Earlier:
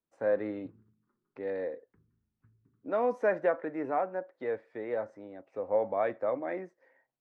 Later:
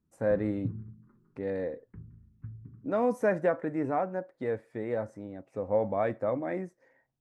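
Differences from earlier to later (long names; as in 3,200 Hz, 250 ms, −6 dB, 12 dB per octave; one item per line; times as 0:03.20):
background +9.0 dB
master: remove three-way crossover with the lows and the highs turned down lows −15 dB, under 310 Hz, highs −24 dB, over 5,000 Hz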